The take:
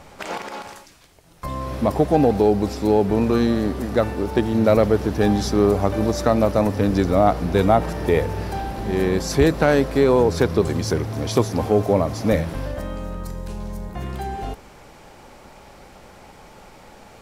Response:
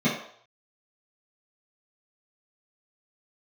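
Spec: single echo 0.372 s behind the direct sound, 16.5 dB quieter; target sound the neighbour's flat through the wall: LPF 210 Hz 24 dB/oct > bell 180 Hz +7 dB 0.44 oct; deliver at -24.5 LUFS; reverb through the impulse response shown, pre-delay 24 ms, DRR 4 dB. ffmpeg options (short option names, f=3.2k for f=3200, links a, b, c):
-filter_complex "[0:a]aecho=1:1:372:0.15,asplit=2[a][b];[1:a]atrim=start_sample=2205,adelay=24[c];[b][c]afir=irnorm=-1:irlink=0,volume=-18dB[d];[a][d]amix=inputs=2:normalize=0,lowpass=f=210:w=0.5412,lowpass=f=210:w=1.3066,equalizer=f=180:t=o:w=0.44:g=7,volume=-7.5dB"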